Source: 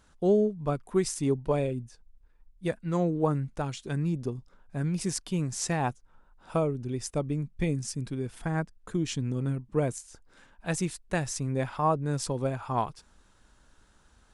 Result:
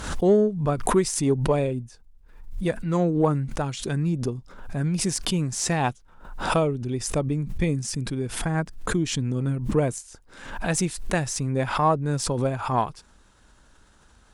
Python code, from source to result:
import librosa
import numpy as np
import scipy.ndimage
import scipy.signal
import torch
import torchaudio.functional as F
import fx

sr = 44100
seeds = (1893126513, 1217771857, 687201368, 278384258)

y = fx.dynamic_eq(x, sr, hz=3300.0, q=1.5, threshold_db=-56.0, ratio=4.0, max_db=7, at=(5.76, 6.94))
y = fx.cheby_harmonics(y, sr, harmonics=(6,), levels_db=(-34,), full_scale_db=-12.0)
y = fx.pre_swell(y, sr, db_per_s=71.0)
y = y * 10.0 ** (4.5 / 20.0)